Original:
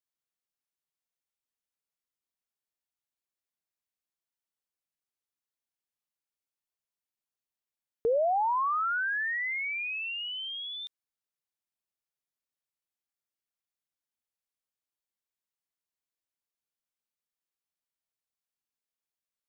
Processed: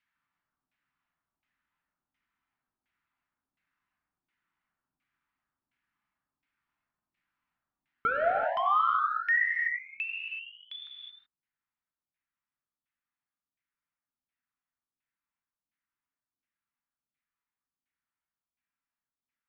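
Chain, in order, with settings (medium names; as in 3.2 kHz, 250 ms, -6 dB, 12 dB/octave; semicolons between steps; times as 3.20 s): band-stop 1.1 kHz, Q 21; overload inside the chain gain 34 dB; LFO low-pass saw down 1.4 Hz 300–2400 Hz; FFT filter 290 Hz 0 dB, 460 Hz -17 dB, 1.1 kHz +3 dB; low-pass that closes with the level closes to 2.8 kHz, closed at -36 dBFS; gain riding 0.5 s; gated-style reverb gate 400 ms flat, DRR -0.5 dB; trim +2.5 dB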